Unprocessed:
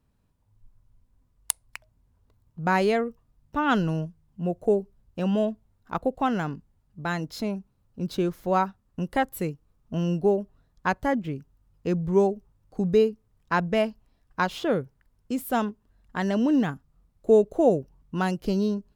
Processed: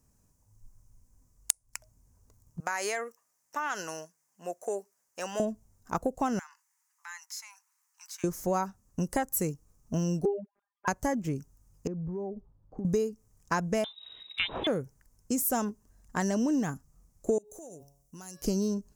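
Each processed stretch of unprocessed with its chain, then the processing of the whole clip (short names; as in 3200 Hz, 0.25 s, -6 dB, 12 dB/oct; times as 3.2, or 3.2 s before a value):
2.6–5.4 HPF 750 Hz + bell 1900 Hz +6 dB 0.76 oct + compressor 5:1, threshold -27 dBFS
6.39–8.24 steep high-pass 880 Hz 72 dB/oct + compressor 2:1, threshold -57 dBFS + bell 2000 Hz +9.5 dB 0.62 oct
10.25–10.88 sine-wave speech + robotiser 201 Hz
11.87–12.85 LPF 1000 Hz + compressor 12:1, threshold -33 dBFS
13.84–14.67 inverted band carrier 3800 Hz + upward compressor, threshold -27 dBFS
17.38–18.42 pre-emphasis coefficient 0.8 + de-hum 140.5 Hz, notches 40 + compressor 20:1, threshold -43 dBFS
whole clip: resonant high shelf 4800 Hz +10 dB, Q 3; notch 1400 Hz, Q 29; compressor 6:1, threshold -26 dBFS; gain +1 dB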